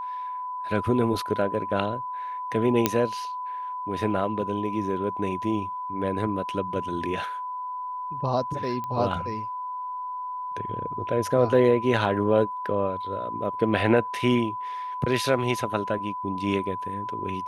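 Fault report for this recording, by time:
tone 1000 Hz -30 dBFS
2.86 pop -4 dBFS
8.84 pop -21 dBFS

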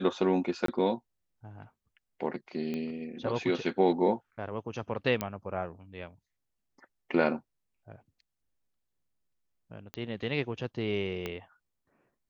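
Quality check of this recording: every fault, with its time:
0.66–0.68 gap 23 ms
2.74 pop -23 dBFS
5.21 pop -15 dBFS
9.94 pop -21 dBFS
11.26 pop -20 dBFS

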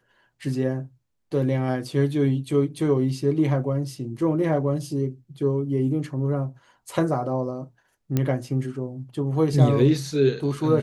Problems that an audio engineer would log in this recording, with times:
8.17 pop -10 dBFS

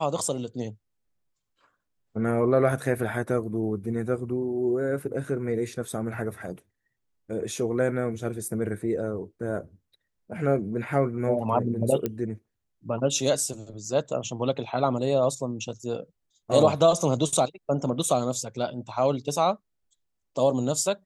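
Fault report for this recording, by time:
12.06 pop -14 dBFS

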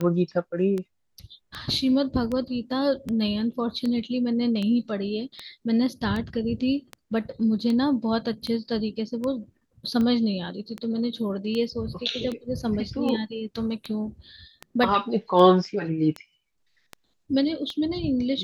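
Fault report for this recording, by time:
tick 78 rpm -18 dBFS

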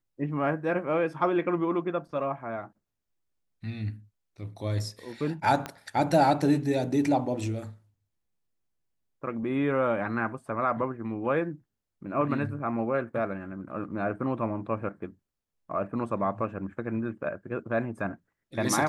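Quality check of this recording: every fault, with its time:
5.66 pop -18 dBFS

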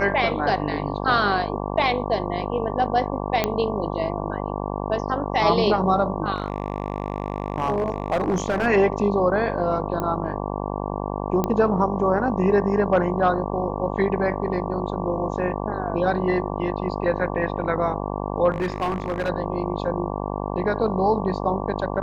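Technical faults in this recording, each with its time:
buzz 50 Hz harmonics 23 -28 dBFS
3.44 pop -6 dBFS
6.34–8.67 clipped -17 dBFS
10 pop -14 dBFS
11.44 pop -10 dBFS
18.51–19.3 clipped -20 dBFS

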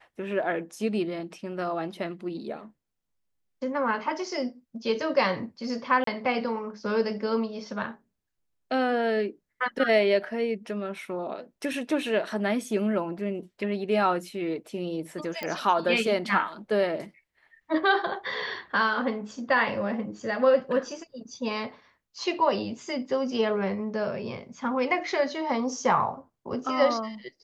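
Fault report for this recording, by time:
6.04–6.07 gap 33 ms
15.43 pop -17 dBFS

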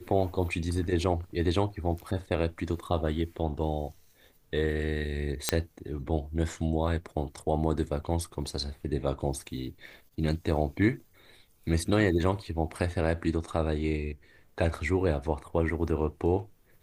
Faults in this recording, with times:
5.49 pop -6 dBFS

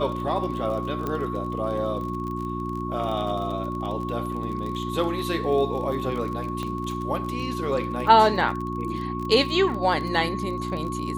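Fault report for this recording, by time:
crackle 30/s -31 dBFS
hum 60 Hz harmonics 6 -31 dBFS
tone 1100 Hz -32 dBFS
1.07 pop -16 dBFS
6.63 pop -19 dBFS

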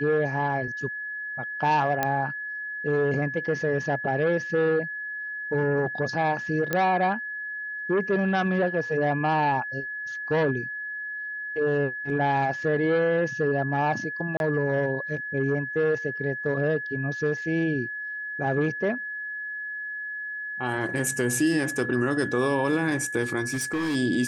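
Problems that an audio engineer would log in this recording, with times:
tone 1700 Hz -31 dBFS
2.03 pop -10 dBFS
6.73 pop -11 dBFS
14.37–14.4 gap 31 ms
23.48–23.96 clipped -23.5 dBFS

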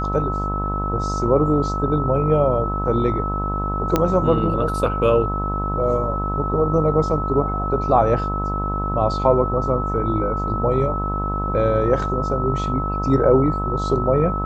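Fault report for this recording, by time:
buzz 50 Hz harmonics 26 -25 dBFS
tone 1300 Hz -25 dBFS
3.96 pop -4 dBFS

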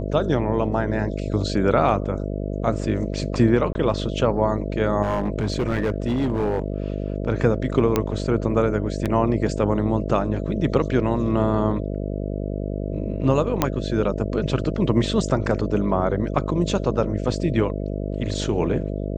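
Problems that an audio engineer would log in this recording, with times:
buzz 50 Hz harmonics 13 -27 dBFS
3.73–3.75 gap 20 ms
5.02–7.12 clipped -17.5 dBFS
7.96 pop -6 dBFS
9.05–9.06 gap 7.6 ms
13.62 pop -4 dBFS

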